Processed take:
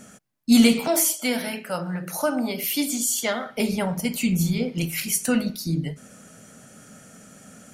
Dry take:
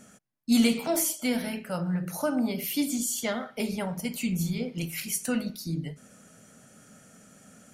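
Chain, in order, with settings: 0.88–3.46 HPF 400 Hz 6 dB/oct; gain +6.5 dB

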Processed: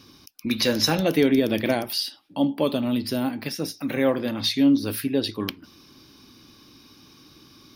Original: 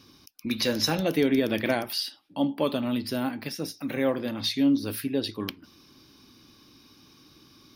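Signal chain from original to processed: 1.29–3.43 dynamic EQ 1500 Hz, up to -5 dB, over -41 dBFS, Q 0.84; gain +4 dB

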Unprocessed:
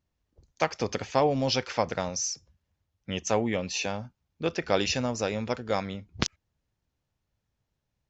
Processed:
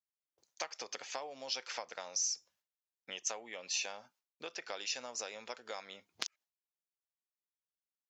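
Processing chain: gate with hold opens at -58 dBFS; compressor 10:1, threshold -34 dBFS, peak gain reduction 16.5 dB; HPF 610 Hz 12 dB/oct; high shelf 3800 Hz +8.5 dB; gain -2.5 dB

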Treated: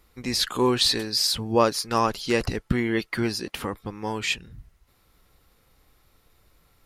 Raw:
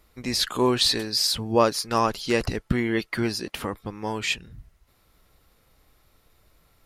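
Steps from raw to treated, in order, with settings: notch 630 Hz, Q 12

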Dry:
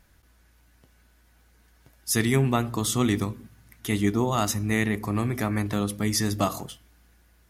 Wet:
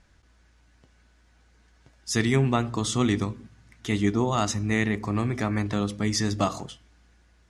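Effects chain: LPF 7700 Hz 24 dB/oct

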